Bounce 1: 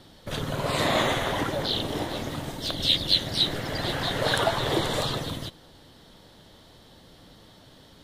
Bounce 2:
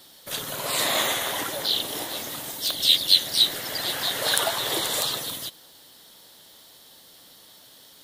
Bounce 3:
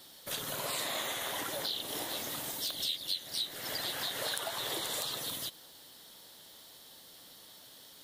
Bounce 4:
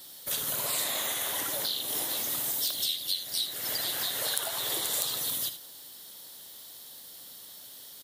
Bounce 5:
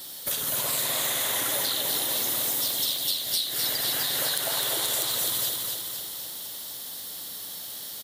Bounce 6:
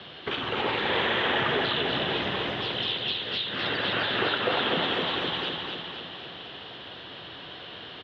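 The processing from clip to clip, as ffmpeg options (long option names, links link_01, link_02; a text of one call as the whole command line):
ffmpeg -i in.wav -af "aemphasis=mode=production:type=riaa,volume=-2dB" out.wav
ffmpeg -i in.wav -af "acompressor=threshold=-30dB:ratio=5,volume=-3.5dB" out.wav
ffmpeg -i in.wav -filter_complex "[0:a]asplit=2[link_01][link_02];[link_02]aecho=0:1:61|78:0.168|0.237[link_03];[link_01][link_03]amix=inputs=2:normalize=0,crystalizer=i=1.5:c=0" out.wav
ffmpeg -i in.wav -filter_complex "[0:a]acompressor=threshold=-33dB:ratio=6,asplit=2[link_01][link_02];[link_02]aecho=0:1:255|510|765|1020|1275|1530|1785|2040:0.631|0.372|0.22|0.13|0.0765|0.0451|0.0266|0.0157[link_03];[link_01][link_03]amix=inputs=2:normalize=0,volume=7.5dB" out.wav
ffmpeg -i in.wav -af "highpass=frequency=180:width_type=q:width=0.5412,highpass=frequency=180:width_type=q:width=1.307,lowpass=frequency=3200:width_type=q:width=0.5176,lowpass=frequency=3200:width_type=q:width=0.7071,lowpass=frequency=3200:width_type=q:width=1.932,afreqshift=-160,highpass=94,volume=8dB" out.wav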